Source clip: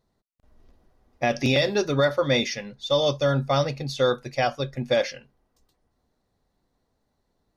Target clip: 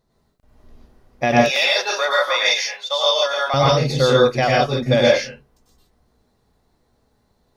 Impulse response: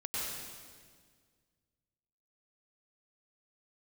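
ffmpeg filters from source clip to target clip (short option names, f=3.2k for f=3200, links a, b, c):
-filter_complex "[0:a]asettb=1/sr,asplit=3[a][b][c];[a]atrim=end=1.344[d];[b]atrim=start=1.34:end=3.54,asetpts=PTS-STARTPTS,afade=t=in:d=0.004:c=qsin,afade=t=out:st=2.196:d=0.004:c=qsin,highpass=f=690:w=0.5412,highpass=f=690:w=1.3066[e];[c]atrim=start=3.536[f];[d][e]acrossfade=d=0.004:c1=hsin:c2=qsin[g];[g][f]acrossfade=d=0.004:c1=qsin:c2=hsin[h];[1:a]atrim=start_sample=2205,afade=t=out:st=0.22:d=0.01,atrim=end_sample=10143[i];[h][i]afir=irnorm=-1:irlink=0,volume=8dB"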